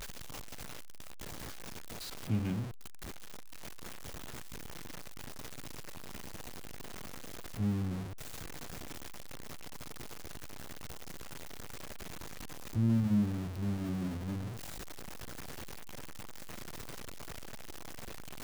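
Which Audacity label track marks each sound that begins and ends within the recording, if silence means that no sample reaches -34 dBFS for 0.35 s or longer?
2.300000	2.630000	sound
7.590000	8.000000	sound
12.760000	14.470000	sound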